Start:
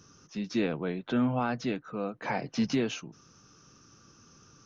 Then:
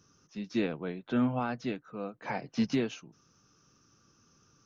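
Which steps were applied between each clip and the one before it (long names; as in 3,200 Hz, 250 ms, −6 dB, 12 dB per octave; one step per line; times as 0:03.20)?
expander for the loud parts 1.5 to 1, over −39 dBFS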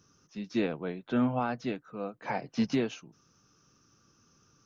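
dynamic equaliser 710 Hz, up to +3 dB, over −40 dBFS, Q 0.92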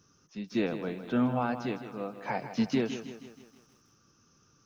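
feedback echo at a low word length 159 ms, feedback 55%, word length 10 bits, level −11 dB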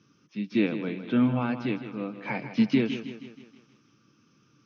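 loudspeaker in its box 120–5,100 Hz, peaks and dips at 130 Hz +8 dB, 210 Hz +6 dB, 300 Hz +8 dB, 730 Hz −6 dB, 2,300 Hz +9 dB, 3,200 Hz +5 dB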